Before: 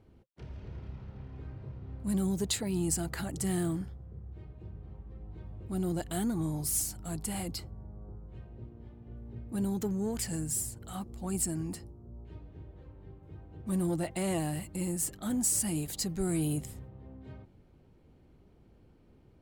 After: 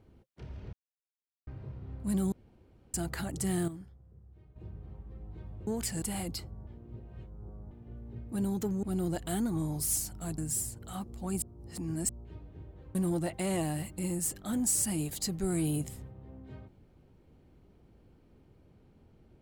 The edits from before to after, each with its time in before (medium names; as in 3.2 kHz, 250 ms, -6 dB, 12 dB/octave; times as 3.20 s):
0.73–1.47 s: mute
2.32–2.94 s: room tone
3.68–4.56 s: gain -10.5 dB
5.67–7.22 s: swap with 10.03–10.38 s
7.87–8.91 s: reverse
11.42–12.09 s: reverse
12.95–13.72 s: delete